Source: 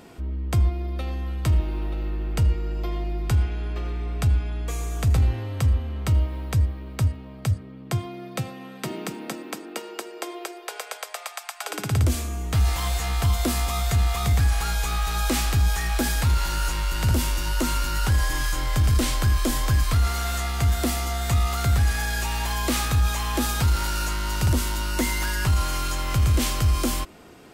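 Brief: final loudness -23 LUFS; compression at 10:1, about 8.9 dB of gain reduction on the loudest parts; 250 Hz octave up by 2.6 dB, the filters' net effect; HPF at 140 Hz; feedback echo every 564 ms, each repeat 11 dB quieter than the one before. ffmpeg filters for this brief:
-af "highpass=140,equalizer=f=250:t=o:g=4,acompressor=threshold=0.0447:ratio=10,aecho=1:1:564|1128|1692:0.282|0.0789|0.0221,volume=2.66"

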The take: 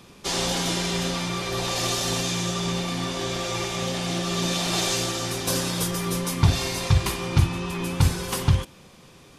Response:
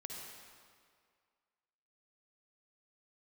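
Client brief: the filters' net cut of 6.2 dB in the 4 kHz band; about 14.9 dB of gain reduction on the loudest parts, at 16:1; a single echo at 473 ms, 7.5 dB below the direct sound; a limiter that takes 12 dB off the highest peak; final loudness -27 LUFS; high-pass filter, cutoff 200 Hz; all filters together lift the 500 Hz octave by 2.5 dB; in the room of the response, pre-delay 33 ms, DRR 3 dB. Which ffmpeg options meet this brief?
-filter_complex "[0:a]highpass=200,equalizer=f=500:t=o:g=3.5,equalizer=f=4000:t=o:g=-8,acompressor=threshold=0.0158:ratio=16,alimiter=level_in=4.22:limit=0.0631:level=0:latency=1,volume=0.237,aecho=1:1:473:0.422,asplit=2[s0][s1];[1:a]atrim=start_sample=2205,adelay=33[s2];[s1][s2]afir=irnorm=-1:irlink=0,volume=0.891[s3];[s0][s3]amix=inputs=2:normalize=0,volume=5.62"

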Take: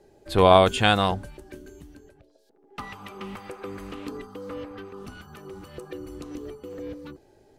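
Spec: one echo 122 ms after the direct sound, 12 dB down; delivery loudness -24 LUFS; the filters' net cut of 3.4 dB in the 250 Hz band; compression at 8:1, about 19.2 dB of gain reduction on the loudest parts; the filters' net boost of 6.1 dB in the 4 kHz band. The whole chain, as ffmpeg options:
-af "equalizer=f=250:t=o:g=-5,equalizer=f=4000:t=o:g=7.5,acompressor=threshold=0.0282:ratio=8,aecho=1:1:122:0.251,volume=5.31"

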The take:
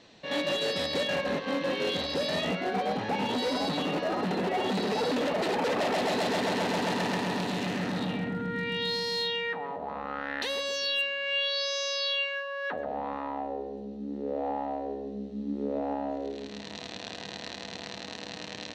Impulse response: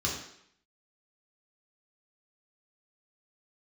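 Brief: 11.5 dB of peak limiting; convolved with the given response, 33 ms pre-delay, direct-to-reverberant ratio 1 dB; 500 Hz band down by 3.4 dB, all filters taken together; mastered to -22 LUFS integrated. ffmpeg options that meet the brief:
-filter_complex "[0:a]equalizer=f=500:t=o:g=-4,alimiter=level_in=2.24:limit=0.0631:level=0:latency=1,volume=0.447,asplit=2[s0][s1];[1:a]atrim=start_sample=2205,adelay=33[s2];[s1][s2]afir=irnorm=-1:irlink=0,volume=0.376[s3];[s0][s3]amix=inputs=2:normalize=0,volume=4.47"

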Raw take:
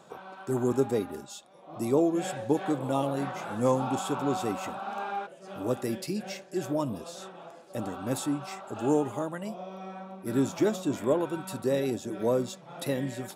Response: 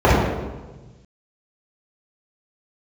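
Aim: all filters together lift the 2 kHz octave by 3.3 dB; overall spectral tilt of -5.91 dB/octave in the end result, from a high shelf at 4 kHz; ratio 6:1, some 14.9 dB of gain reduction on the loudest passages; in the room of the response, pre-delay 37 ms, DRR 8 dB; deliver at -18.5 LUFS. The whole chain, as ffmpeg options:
-filter_complex "[0:a]equalizer=f=2000:t=o:g=6,highshelf=f=4000:g=-7,acompressor=threshold=0.0158:ratio=6,asplit=2[s0][s1];[1:a]atrim=start_sample=2205,adelay=37[s2];[s1][s2]afir=irnorm=-1:irlink=0,volume=0.015[s3];[s0][s3]amix=inputs=2:normalize=0,volume=10"

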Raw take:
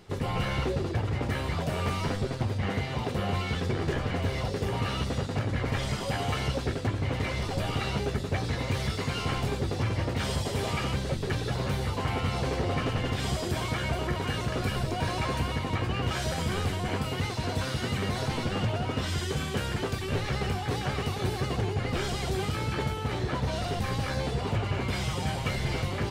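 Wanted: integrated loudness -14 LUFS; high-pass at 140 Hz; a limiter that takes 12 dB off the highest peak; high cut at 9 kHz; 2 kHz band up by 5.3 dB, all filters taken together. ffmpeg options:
-af "highpass=140,lowpass=9000,equalizer=f=2000:t=o:g=6.5,volume=11.2,alimiter=limit=0.531:level=0:latency=1"

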